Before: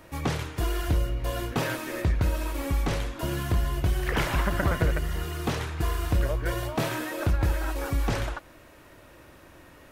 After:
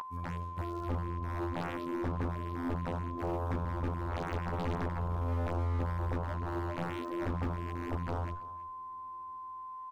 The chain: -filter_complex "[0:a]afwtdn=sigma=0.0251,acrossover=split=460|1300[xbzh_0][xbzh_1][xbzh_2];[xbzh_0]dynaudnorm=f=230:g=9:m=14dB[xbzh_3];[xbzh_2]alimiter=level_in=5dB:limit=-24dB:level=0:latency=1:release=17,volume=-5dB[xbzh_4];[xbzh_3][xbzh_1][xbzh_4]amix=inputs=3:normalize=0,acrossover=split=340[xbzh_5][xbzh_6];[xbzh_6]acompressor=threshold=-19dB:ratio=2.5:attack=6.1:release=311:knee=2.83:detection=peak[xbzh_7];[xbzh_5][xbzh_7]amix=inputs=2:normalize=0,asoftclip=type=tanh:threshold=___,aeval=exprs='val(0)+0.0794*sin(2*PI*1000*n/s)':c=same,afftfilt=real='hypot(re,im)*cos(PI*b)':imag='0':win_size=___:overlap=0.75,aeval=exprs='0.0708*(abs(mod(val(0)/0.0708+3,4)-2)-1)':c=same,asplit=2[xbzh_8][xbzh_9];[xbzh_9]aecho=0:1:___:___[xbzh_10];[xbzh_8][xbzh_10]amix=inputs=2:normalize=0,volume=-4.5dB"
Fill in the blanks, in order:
-17dB, 2048, 323, 0.1